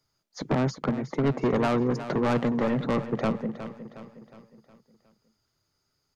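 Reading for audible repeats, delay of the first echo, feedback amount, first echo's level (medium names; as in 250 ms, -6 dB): 4, 363 ms, 48%, -12.0 dB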